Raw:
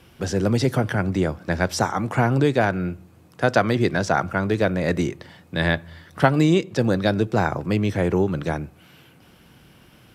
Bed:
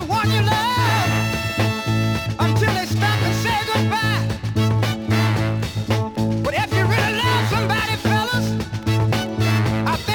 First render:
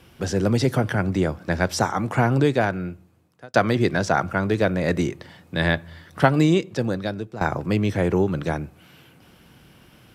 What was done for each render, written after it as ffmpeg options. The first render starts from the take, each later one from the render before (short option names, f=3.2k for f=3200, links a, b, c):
-filter_complex "[0:a]asplit=3[a][b][c];[a]atrim=end=3.54,asetpts=PTS-STARTPTS,afade=t=out:st=2.46:d=1.08[d];[b]atrim=start=3.54:end=7.41,asetpts=PTS-STARTPTS,afade=t=in:d=0.004:c=hsin,afade=t=out:st=2.9:d=0.97:silence=0.158489[e];[c]atrim=start=7.41,asetpts=PTS-STARTPTS,afade=t=in:d=0.004:c=hsin:silence=0.158489[f];[d][e][f]concat=n=3:v=0:a=1"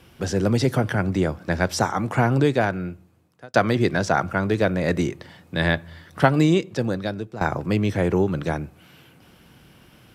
-af anull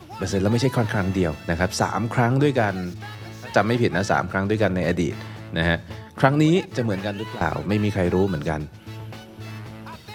-filter_complex "[1:a]volume=-18dB[a];[0:a][a]amix=inputs=2:normalize=0"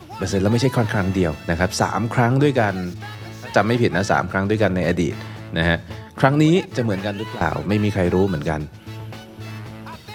-af "volume=2.5dB,alimiter=limit=-1dB:level=0:latency=1"